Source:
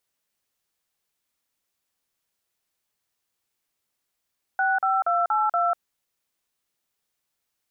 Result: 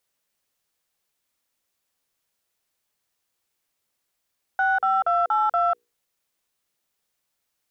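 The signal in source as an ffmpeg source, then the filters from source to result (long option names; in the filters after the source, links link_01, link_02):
-f lavfi -i "aevalsrc='0.0794*clip(min(mod(t,0.237),0.195-mod(t,0.237))/0.002,0,1)*(eq(floor(t/0.237),0)*(sin(2*PI*770*mod(t,0.237))+sin(2*PI*1477*mod(t,0.237)))+eq(floor(t/0.237),1)*(sin(2*PI*770*mod(t,0.237))+sin(2*PI*1336*mod(t,0.237)))+eq(floor(t/0.237),2)*(sin(2*PI*697*mod(t,0.237))+sin(2*PI*1336*mod(t,0.237)))+eq(floor(t/0.237),3)*(sin(2*PI*852*mod(t,0.237))+sin(2*PI*1336*mod(t,0.237)))+eq(floor(t/0.237),4)*(sin(2*PI*697*mod(t,0.237))+sin(2*PI*1336*mod(t,0.237))))':duration=1.185:sample_rate=44100"
-filter_complex "[0:a]equalizer=frequency=520:width=3.6:gain=2,bandreject=frequency=60:width_type=h:width=6,bandreject=frequency=120:width_type=h:width=6,bandreject=frequency=180:width_type=h:width=6,bandreject=frequency=240:width_type=h:width=6,bandreject=frequency=300:width_type=h:width=6,bandreject=frequency=360:width_type=h:width=6,bandreject=frequency=420:width_type=h:width=6,bandreject=frequency=480:width_type=h:width=6,asplit=2[link_01][link_02];[link_02]asoftclip=type=tanh:threshold=-24dB,volume=-12dB[link_03];[link_01][link_03]amix=inputs=2:normalize=0"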